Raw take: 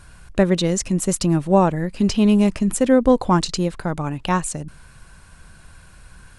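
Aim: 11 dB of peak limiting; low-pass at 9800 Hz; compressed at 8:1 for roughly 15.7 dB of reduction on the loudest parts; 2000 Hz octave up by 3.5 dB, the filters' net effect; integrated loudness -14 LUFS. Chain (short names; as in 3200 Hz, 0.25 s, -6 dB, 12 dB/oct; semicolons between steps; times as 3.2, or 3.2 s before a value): LPF 9800 Hz; bell 2000 Hz +4.5 dB; compressor 8:1, threshold -26 dBFS; gain +19 dB; limiter -3.5 dBFS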